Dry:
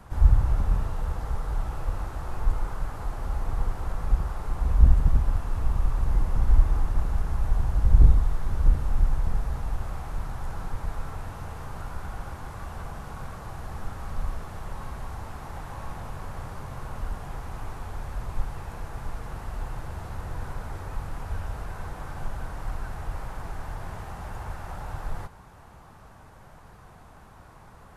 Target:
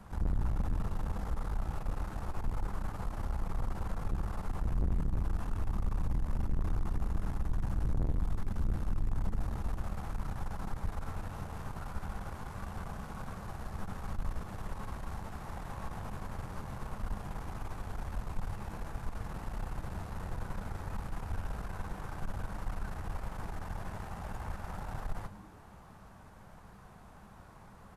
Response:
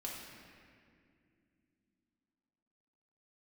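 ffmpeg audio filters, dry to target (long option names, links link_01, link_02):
-filter_complex "[0:a]equalizer=frequency=200:width_type=o:width=0.32:gain=8,aeval=exprs='(tanh(20*val(0)+0.6)-tanh(0.6))/20':channel_layout=same,asplit=5[link_01][link_02][link_03][link_04][link_05];[link_02]adelay=104,afreqshift=-110,volume=-15.5dB[link_06];[link_03]adelay=208,afreqshift=-220,volume=-22.1dB[link_07];[link_04]adelay=312,afreqshift=-330,volume=-28.6dB[link_08];[link_05]adelay=416,afreqshift=-440,volume=-35.2dB[link_09];[link_01][link_06][link_07][link_08][link_09]amix=inputs=5:normalize=0,volume=-2dB"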